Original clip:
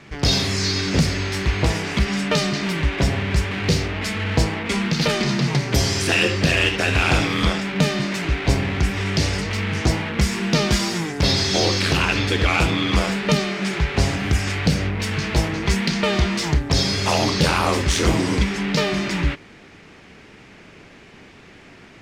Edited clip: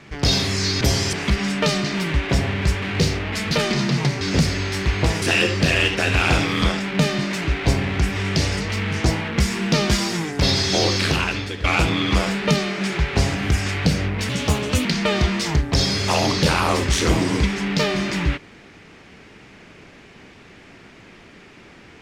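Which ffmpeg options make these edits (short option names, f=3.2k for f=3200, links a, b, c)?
-filter_complex "[0:a]asplit=9[a][b][c][d][e][f][g][h][i];[a]atrim=end=0.812[j];[b]atrim=start=5.708:end=6.032[k];[c]atrim=start=1.818:end=4.202[l];[d]atrim=start=5.008:end=5.712[m];[e]atrim=start=0.808:end=1.822[n];[f]atrim=start=6.028:end=12.45,asetpts=PTS-STARTPTS,afade=t=out:st=5.842:d=0.58:silence=0.199526[o];[g]atrim=start=12.45:end=15.104,asetpts=PTS-STARTPTS,afade=t=in:d=0.004:c=hsin:silence=0.199526[p];[h]atrim=start=15.1:end=15.83,asetpts=PTS-STARTPTS,asetrate=57330,aresample=44100[q];[i]atrim=start=15.826[r];[j][k]acrossfade=d=0.004:c1=hsin:c2=hsin[s];[s][l]acrossfade=d=0.004:c1=hsin:c2=hsin[t];[t][m]acrossfade=d=0.004:c1=hsin:c2=hsin[u];[u][n]acrossfade=d=0.004:c1=hsin:c2=hsin[v];[o][p]concat=n=2:v=0:a=1[w];[v][w]acrossfade=d=0.004:c1=hsin:c2=hsin[x];[x][q]acrossfade=d=0.004:c1=hsin:c2=hsin[y];[y][r]acrossfade=d=0.004:c1=hsin:c2=hsin"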